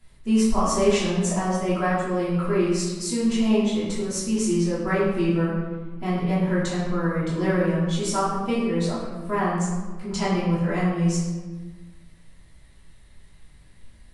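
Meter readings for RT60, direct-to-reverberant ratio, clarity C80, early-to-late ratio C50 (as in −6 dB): 1.4 s, −10.0 dB, 3.0 dB, 0.5 dB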